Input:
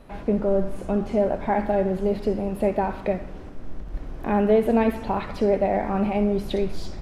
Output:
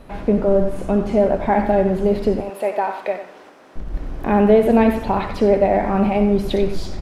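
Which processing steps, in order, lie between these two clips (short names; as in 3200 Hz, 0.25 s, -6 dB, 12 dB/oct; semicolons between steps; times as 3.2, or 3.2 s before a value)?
2.4–3.76 HPF 580 Hz 12 dB/oct; outdoor echo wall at 16 m, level -11 dB; gain +5.5 dB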